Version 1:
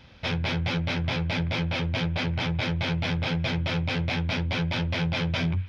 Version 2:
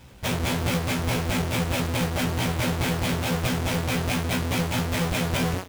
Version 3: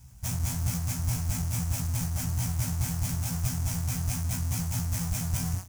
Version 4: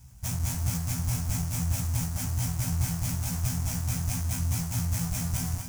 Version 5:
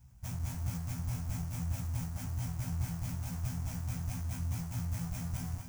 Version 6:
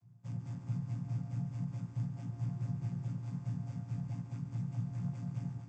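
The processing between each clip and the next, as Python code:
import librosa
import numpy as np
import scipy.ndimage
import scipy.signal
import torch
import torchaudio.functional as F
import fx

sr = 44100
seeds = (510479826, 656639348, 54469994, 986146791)

y1 = fx.halfwave_hold(x, sr)
y1 = fx.doubler(y1, sr, ms=16.0, db=-4.0)
y1 = F.gain(torch.from_numpy(y1), -3.0).numpy()
y2 = fx.curve_eq(y1, sr, hz=(120.0, 490.0, 710.0, 3700.0, 6000.0), db=(0, -27, -13, -17, 1))
y3 = y2 + 10.0 ** (-8.5 / 20.0) * np.pad(y2, (int(246 * sr / 1000.0), 0))[:len(y2)]
y4 = fx.peak_eq(y3, sr, hz=9400.0, db=-8.0, octaves=2.6)
y4 = F.gain(torch.from_numpy(y4), -7.0).numpy()
y5 = fx.chord_vocoder(y4, sr, chord='minor triad', root=46)
y5 = y5 + 10.0 ** (-10.5 / 20.0) * np.pad(y5, (int(140 * sr / 1000.0), 0))[:len(y5)]
y5 = F.gain(torch.from_numpy(y5), 2.5).numpy()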